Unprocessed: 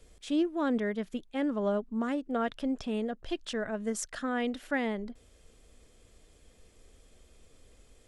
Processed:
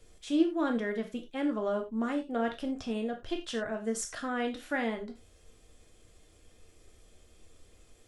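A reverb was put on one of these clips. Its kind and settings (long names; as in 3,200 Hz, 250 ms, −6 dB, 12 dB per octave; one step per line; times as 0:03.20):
reverb whose tail is shaped and stops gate 120 ms falling, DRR 3 dB
level −1.5 dB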